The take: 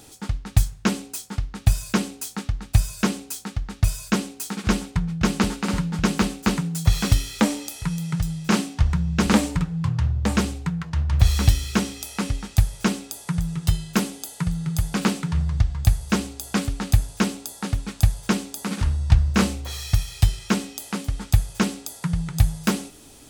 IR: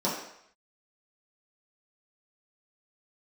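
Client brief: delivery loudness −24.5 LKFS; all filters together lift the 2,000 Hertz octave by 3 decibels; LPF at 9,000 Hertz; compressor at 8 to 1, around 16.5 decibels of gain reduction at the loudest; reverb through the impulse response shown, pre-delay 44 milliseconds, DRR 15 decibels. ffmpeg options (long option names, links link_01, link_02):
-filter_complex "[0:a]lowpass=9000,equalizer=frequency=2000:width_type=o:gain=4,acompressor=threshold=-28dB:ratio=8,asplit=2[link_01][link_02];[1:a]atrim=start_sample=2205,adelay=44[link_03];[link_02][link_03]afir=irnorm=-1:irlink=0,volume=-25.5dB[link_04];[link_01][link_04]amix=inputs=2:normalize=0,volume=9dB"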